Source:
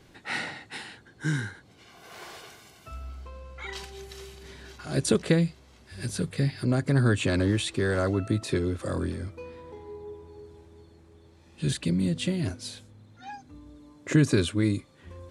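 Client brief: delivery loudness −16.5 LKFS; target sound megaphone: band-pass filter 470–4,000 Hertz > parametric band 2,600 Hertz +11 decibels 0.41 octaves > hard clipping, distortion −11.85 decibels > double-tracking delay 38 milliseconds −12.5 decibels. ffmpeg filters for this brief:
ffmpeg -i in.wav -filter_complex "[0:a]highpass=470,lowpass=4000,equalizer=frequency=2600:width_type=o:width=0.41:gain=11,asoftclip=type=hard:threshold=-25dB,asplit=2[link_01][link_02];[link_02]adelay=38,volume=-12.5dB[link_03];[link_01][link_03]amix=inputs=2:normalize=0,volume=18dB" out.wav

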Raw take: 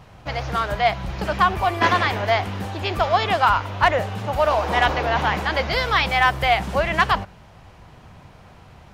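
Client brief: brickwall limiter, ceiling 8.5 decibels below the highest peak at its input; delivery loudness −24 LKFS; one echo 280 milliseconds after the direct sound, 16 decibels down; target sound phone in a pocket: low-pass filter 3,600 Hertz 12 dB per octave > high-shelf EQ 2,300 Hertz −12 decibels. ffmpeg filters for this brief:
ffmpeg -i in.wav -af "alimiter=limit=-14dB:level=0:latency=1,lowpass=3600,highshelf=frequency=2300:gain=-12,aecho=1:1:280:0.158,volume=2.5dB" out.wav

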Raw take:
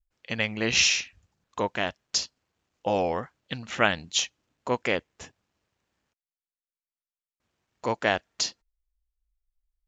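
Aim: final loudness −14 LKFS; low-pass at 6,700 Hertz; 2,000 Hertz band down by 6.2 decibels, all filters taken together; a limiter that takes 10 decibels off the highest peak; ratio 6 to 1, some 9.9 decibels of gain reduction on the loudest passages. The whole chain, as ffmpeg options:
ffmpeg -i in.wav -af "lowpass=6700,equalizer=frequency=2000:width_type=o:gain=-8.5,acompressor=threshold=-31dB:ratio=6,volume=27dB,alimiter=limit=-0.5dB:level=0:latency=1" out.wav

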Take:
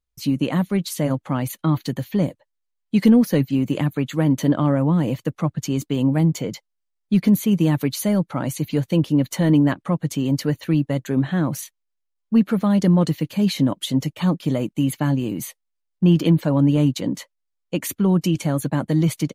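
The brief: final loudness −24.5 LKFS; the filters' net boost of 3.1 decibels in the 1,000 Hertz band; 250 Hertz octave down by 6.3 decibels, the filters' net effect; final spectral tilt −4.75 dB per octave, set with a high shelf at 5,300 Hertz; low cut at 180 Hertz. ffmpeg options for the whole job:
ffmpeg -i in.wav -af "highpass=180,equalizer=frequency=250:width_type=o:gain=-6.5,equalizer=frequency=1000:width_type=o:gain=4,highshelf=frequency=5300:gain=6.5,volume=1dB" out.wav

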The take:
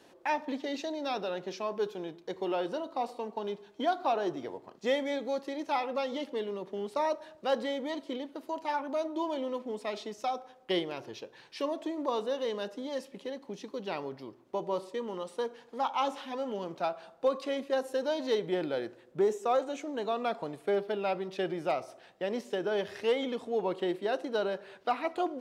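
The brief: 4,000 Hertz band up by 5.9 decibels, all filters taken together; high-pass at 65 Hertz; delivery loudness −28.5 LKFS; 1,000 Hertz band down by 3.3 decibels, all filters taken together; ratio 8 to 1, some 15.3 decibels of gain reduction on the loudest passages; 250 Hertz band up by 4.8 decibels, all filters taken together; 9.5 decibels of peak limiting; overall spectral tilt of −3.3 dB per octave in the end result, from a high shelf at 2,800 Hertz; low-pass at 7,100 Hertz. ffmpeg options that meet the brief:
ffmpeg -i in.wav -af "highpass=65,lowpass=7100,equalizer=frequency=250:width_type=o:gain=6.5,equalizer=frequency=1000:width_type=o:gain=-6,highshelf=frequency=2800:gain=5.5,equalizer=frequency=4000:width_type=o:gain=4,acompressor=threshold=-38dB:ratio=8,volume=15.5dB,alimiter=limit=-18.5dB:level=0:latency=1" out.wav

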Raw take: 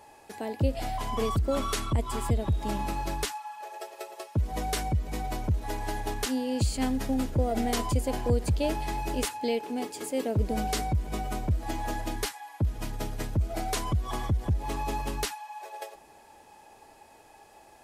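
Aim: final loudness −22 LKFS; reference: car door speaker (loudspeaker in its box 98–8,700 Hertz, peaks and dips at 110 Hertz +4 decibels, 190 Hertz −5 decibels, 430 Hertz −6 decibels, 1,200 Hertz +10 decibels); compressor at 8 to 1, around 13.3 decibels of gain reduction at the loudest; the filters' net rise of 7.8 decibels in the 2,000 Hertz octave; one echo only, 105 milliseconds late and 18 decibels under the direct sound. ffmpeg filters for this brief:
ffmpeg -i in.wav -af "equalizer=frequency=2000:width_type=o:gain=8.5,acompressor=threshold=-35dB:ratio=8,highpass=98,equalizer=frequency=110:width_type=q:width=4:gain=4,equalizer=frequency=190:width_type=q:width=4:gain=-5,equalizer=frequency=430:width_type=q:width=4:gain=-6,equalizer=frequency=1200:width_type=q:width=4:gain=10,lowpass=frequency=8700:width=0.5412,lowpass=frequency=8700:width=1.3066,aecho=1:1:105:0.126,volume=17.5dB" out.wav

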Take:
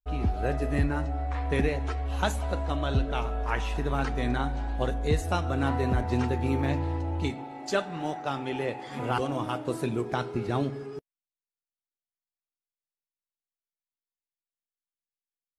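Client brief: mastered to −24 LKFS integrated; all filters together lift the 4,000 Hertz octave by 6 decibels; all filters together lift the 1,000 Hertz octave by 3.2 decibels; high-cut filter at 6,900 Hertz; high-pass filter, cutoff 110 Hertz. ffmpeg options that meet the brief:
ffmpeg -i in.wav -af "highpass=110,lowpass=6900,equalizer=frequency=1000:width_type=o:gain=4,equalizer=frequency=4000:width_type=o:gain=7.5,volume=5.5dB" out.wav

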